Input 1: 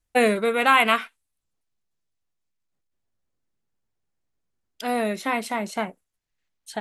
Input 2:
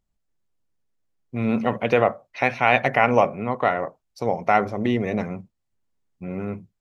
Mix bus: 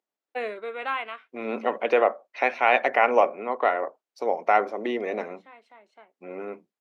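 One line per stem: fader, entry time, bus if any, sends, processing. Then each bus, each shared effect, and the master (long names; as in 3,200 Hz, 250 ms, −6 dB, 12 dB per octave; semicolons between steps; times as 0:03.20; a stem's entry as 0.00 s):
−11.0 dB, 0.20 s, no send, low-pass filter 3,200 Hz 12 dB per octave; automatic ducking −13 dB, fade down 0.40 s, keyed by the second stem
−1.0 dB, 0.00 s, no send, high-shelf EQ 5,100 Hz −10 dB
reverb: not used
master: high-pass filter 320 Hz 24 dB per octave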